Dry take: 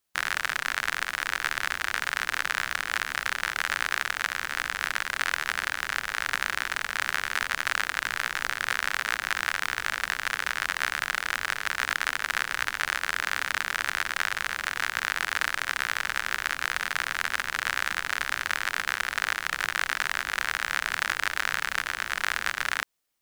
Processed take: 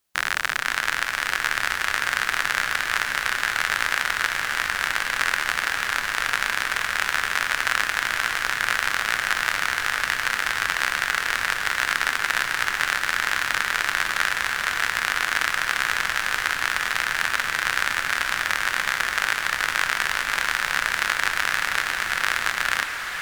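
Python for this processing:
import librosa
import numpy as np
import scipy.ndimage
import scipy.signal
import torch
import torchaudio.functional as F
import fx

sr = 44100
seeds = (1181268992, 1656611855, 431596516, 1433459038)

y = fx.echo_diffused(x, sr, ms=549, feedback_pct=78, wet_db=-8.5)
y = y * 10.0 ** (4.0 / 20.0)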